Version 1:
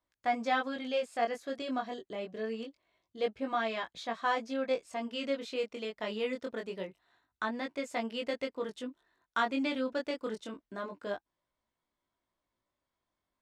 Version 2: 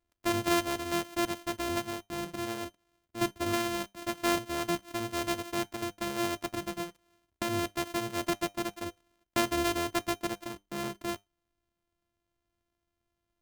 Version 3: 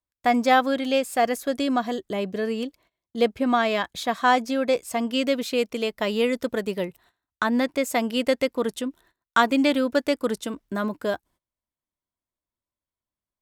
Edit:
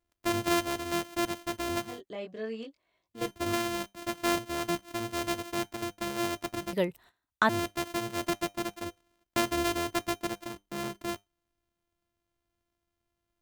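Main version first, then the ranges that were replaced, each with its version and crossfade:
2
1.92–3.22 s: from 1, crossfade 0.24 s
6.73–7.49 s: from 3

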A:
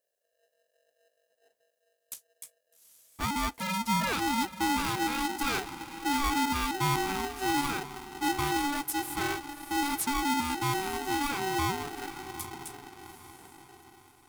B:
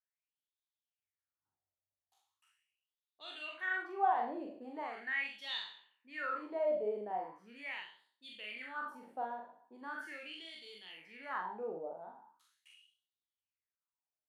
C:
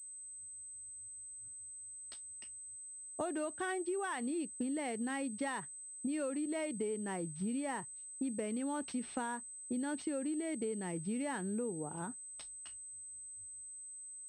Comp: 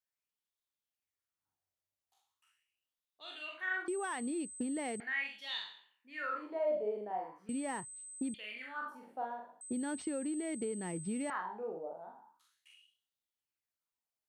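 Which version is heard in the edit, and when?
B
3.88–5.00 s: from C
7.49–8.34 s: from C
9.61–11.30 s: from C
not used: A

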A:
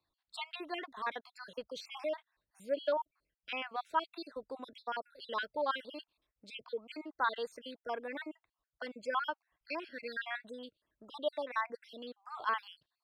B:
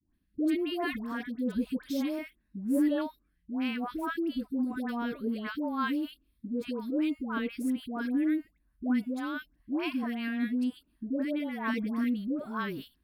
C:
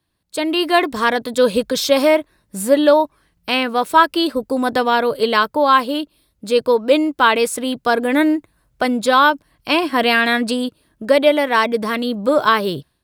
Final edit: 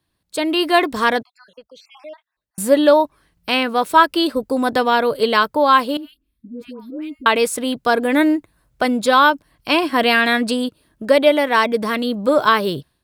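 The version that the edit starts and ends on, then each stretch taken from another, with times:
C
1.23–2.58 s: from A
5.97–7.26 s: from B

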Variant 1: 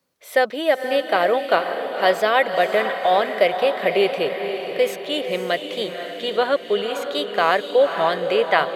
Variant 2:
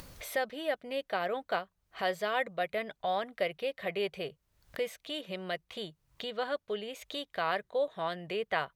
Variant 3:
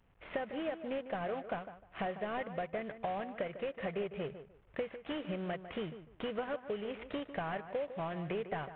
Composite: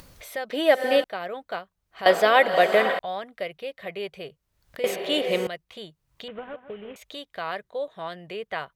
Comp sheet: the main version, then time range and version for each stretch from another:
2
0.50–1.04 s: from 1
2.06–2.99 s: from 1
4.84–5.47 s: from 1
6.28–6.96 s: from 3

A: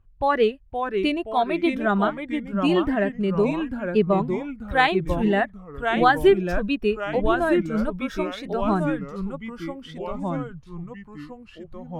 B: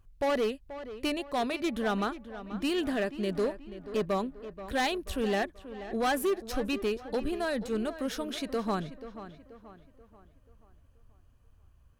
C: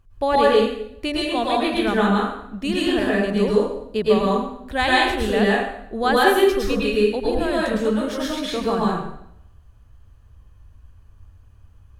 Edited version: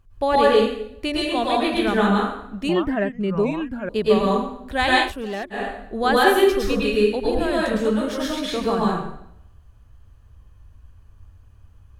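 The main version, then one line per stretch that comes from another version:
C
2.69–3.89 s: from A
5.06–5.58 s: from B, crossfade 0.16 s

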